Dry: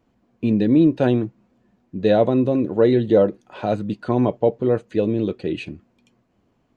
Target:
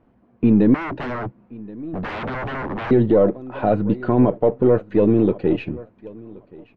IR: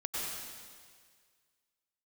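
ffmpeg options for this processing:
-filter_complex "[0:a]aeval=exprs='if(lt(val(0),0),0.708*val(0),val(0))':channel_layout=same,aecho=1:1:1076|2152:0.0708|0.0113,alimiter=limit=-14.5dB:level=0:latency=1:release=36,asettb=1/sr,asplit=3[link_01][link_02][link_03];[link_01]atrim=end=0.744[link_04];[link_02]atrim=start=0.74:end=2.91,asetpts=PTS-STARTPTS,afade=type=in:duration=0.004:curve=qsin,afade=type=out:start_time=2.166:duration=0.004:curve=qsin,aeval=exprs='0.0355*(abs(mod(val(0)/0.0355+3,4)-2)-1)':channel_layout=same[link_05];[link_03]atrim=start=2.906[link_06];[link_04][link_05]acrossfade=duration=0.004:curve1=hsin:curve2=qsin[link_07];[link_07][link_06]acrossfade=duration=0.004:curve1=qsin:curve2=hsin,lowpass=1800,volume=7.5dB"

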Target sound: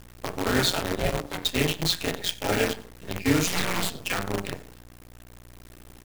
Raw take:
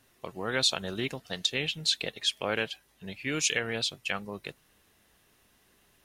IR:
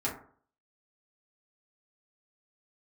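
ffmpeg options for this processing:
-filter_complex "[1:a]atrim=start_sample=2205[link_01];[0:a][link_01]afir=irnorm=-1:irlink=0,asplit=2[link_02][link_03];[link_03]acompressor=threshold=-37dB:ratio=8,volume=1dB[link_04];[link_02][link_04]amix=inputs=2:normalize=0,lowshelf=frequency=250:gain=6,tremolo=f=180:d=0.71,aecho=1:1:91:0.141,aeval=exprs='val(0)+0.00562*(sin(2*PI*60*n/s)+sin(2*PI*2*60*n/s)/2+sin(2*PI*3*60*n/s)/3+sin(2*PI*4*60*n/s)/4+sin(2*PI*5*60*n/s)/5)':channel_layout=same,acrusher=bits=5:dc=4:mix=0:aa=0.000001,asplit=3[link_05][link_06][link_07];[link_05]afade=type=out:start_time=0.98:duration=0.02[link_08];[link_06]aeval=exprs='val(0)*sin(2*PI*290*n/s)':channel_layout=same,afade=type=in:start_time=0.98:duration=0.02,afade=type=out:start_time=1.44:duration=0.02[link_09];[link_07]afade=type=in:start_time=1.44:duration=0.02[link_10];[link_08][link_09][link_10]amix=inputs=3:normalize=0,asettb=1/sr,asplit=3[link_11][link_12][link_13];[link_11]atrim=end=2.154[link_14];[link_12]atrim=start=2.15:end=2.64,asetpts=PTS-STARTPTS,afade=type=in:duration=0.004:curve=qsin,afade=type=out:start_time=0.486:duration=0.004:curve=qsin,equalizer=frequency=1100:width=7.6:gain=-13[link_15];[link_13]atrim=start=2.636[link_16];[link_14][link_15]acrossfade=duration=0.004:curve1=hsin:curve2=qsin[link_17];[link_17][link_16]acrossfade=duration=0.004:curve1=qsin:curve2=hsin,asplit=3[link_18][link_19][link_20];[link_18]afade=type=out:start_time=3.46:duration=0.02[link_21];[link_19]aeval=exprs='abs(val(0))':channel_layout=same,afade=type=in:start_time=3.46:duration=0.02,afade=type=out:start_time=3.96:duration=0.02[link_22];[link_20]afade=type=in:start_time=3.96:duration=0.02[link_23];[link_21][link_22][link_23]amix=inputs=3:normalize=0"

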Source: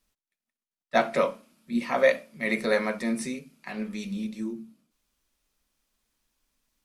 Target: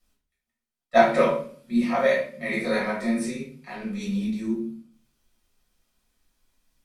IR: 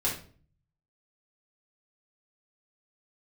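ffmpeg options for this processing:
-filter_complex "[0:a]asplit=3[link_01][link_02][link_03];[link_01]afade=type=out:start_time=1.83:duration=0.02[link_04];[link_02]flanger=delay=20:depth=2.1:speed=2.8,afade=type=in:start_time=1.83:duration=0.02,afade=type=out:start_time=3.99:duration=0.02[link_05];[link_03]afade=type=in:start_time=3.99:duration=0.02[link_06];[link_04][link_05][link_06]amix=inputs=3:normalize=0[link_07];[1:a]atrim=start_sample=2205,asetrate=39690,aresample=44100[link_08];[link_07][link_08]afir=irnorm=-1:irlink=0,volume=-4.5dB"

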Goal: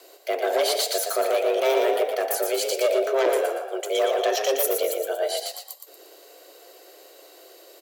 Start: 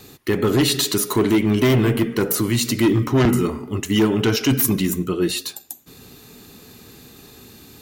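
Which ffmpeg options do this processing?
ffmpeg -i in.wav -filter_complex "[0:a]asplit=5[link_01][link_02][link_03][link_04][link_05];[link_02]adelay=117,afreqshift=33,volume=-5dB[link_06];[link_03]adelay=234,afreqshift=66,volume=-13.9dB[link_07];[link_04]adelay=351,afreqshift=99,volume=-22.7dB[link_08];[link_05]adelay=468,afreqshift=132,volume=-31.6dB[link_09];[link_01][link_06][link_07][link_08][link_09]amix=inputs=5:normalize=0,afreqshift=270,volume=-6dB" out.wav

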